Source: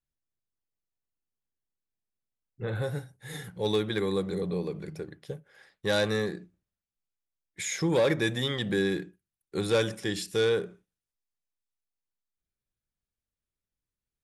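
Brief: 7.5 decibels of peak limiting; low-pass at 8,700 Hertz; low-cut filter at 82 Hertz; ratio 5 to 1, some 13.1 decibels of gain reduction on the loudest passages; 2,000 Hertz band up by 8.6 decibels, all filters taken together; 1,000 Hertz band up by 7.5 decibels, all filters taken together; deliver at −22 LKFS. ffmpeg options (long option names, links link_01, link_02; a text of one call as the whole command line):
ffmpeg -i in.wav -af "highpass=82,lowpass=8700,equalizer=frequency=1000:width_type=o:gain=7,equalizer=frequency=2000:width_type=o:gain=8.5,acompressor=threshold=-32dB:ratio=5,volume=16.5dB,alimiter=limit=-10dB:level=0:latency=1" out.wav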